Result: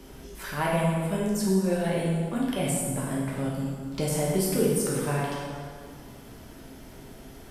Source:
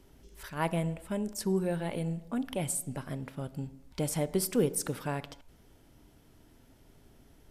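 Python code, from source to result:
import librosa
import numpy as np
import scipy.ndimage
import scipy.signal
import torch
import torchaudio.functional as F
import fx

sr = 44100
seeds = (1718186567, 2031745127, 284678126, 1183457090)

y = fx.rev_plate(x, sr, seeds[0], rt60_s=1.6, hf_ratio=0.7, predelay_ms=0, drr_db=-5.5)
y = fx.band_squash(y, sr, depth_pct=40)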